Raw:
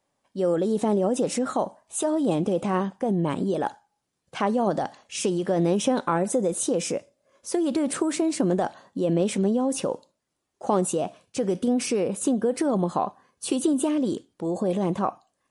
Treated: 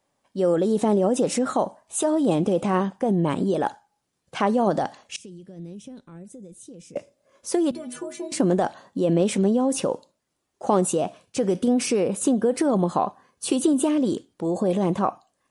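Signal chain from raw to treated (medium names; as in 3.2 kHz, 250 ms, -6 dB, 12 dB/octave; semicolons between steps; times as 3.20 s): 5.16–6.96 s: amplifier tone stack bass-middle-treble 10-0-1; 7.71–8.32 s: inharmonic resonator 73 Hz, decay 0.5 s, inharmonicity 0.03; trim +2.5 dB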